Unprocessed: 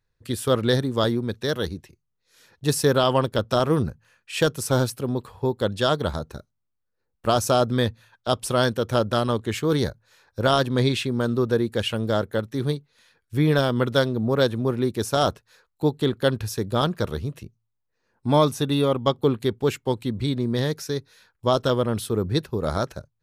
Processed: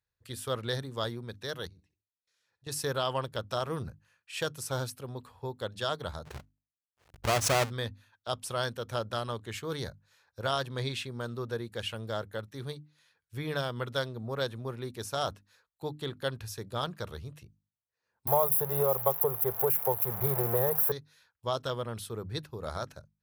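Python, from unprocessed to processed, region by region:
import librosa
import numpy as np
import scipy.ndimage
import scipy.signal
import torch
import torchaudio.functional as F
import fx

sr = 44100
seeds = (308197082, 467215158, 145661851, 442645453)

y = fx.chain(x, sr, fx.lowpass(hz=8800.0, slope=12),
    fx.level_steps(step_db=23),
    fx.room_flutter(wall_m=11.4, rt60_s=0.27), at=(1.67, 2.72))
y = fx.chain(y, sr, fx.halfwave_hold(),
    fx.high_shelf(hz=8500.0, db=-6.5),
    fx.pre_swell(db_per_s=130.0), at=(6.25, 7.7))
y = fx.chain(y, sr, fx.crossing_spikes(level_db=-14.5),
    fx.curve_eq(hz=(180.0, 270.0, 400.0, 790.0, 2000.0, 3400.0, 6500.0, 12000.0), db=(0, -19, 6, 9, -9, -20, -29, 7)),
    fx.band_squash(depth_pct=100), at=(18.27, 20.92))
y = scipy.signal.sosfilt(scipy.signal.butter(2, 54.0, 'highpass', fs=sr, output='sos'), y)
y = fx.peak_eq(y, sr, hz=270.0, db=-9.0, octaves=1.6)
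y = fx.hum_notches(y, sr, base_hz=50, count=6)
y = y * 10.0 ** (-8.5 / 20.0)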